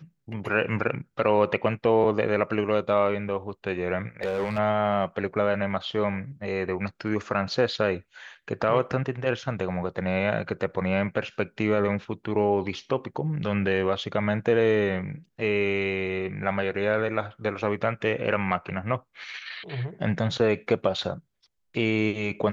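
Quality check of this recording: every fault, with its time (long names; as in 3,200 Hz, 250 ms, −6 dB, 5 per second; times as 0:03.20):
0:04.21–0:04.59: clipping −23 dBFS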